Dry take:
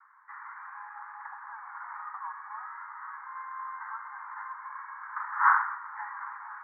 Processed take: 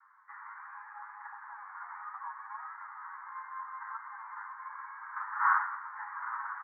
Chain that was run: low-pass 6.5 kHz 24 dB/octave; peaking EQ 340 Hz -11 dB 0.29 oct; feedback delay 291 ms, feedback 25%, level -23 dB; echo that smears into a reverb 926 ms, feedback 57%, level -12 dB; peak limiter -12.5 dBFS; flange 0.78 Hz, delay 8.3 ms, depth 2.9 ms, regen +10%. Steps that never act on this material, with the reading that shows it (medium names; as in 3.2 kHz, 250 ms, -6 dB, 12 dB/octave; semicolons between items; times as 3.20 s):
low-pass 6.5 kHz: input has nothing above 2.2 kHz; peaking EQ 340 Hz: input has nothing below 720 Hz